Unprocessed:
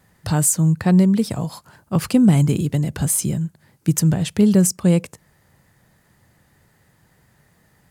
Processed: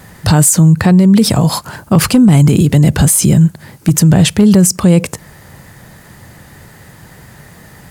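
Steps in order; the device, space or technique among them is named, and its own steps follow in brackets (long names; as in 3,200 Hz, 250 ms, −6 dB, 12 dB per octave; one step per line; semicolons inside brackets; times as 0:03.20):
loud club master (downward compressor 2 to 1, threshold −17 dBFS, peak gain reduction 5 dB; hard clipping −11.5 dBFS, distortion −29 dB; boost into a limiter +21 dB)
level −1 dB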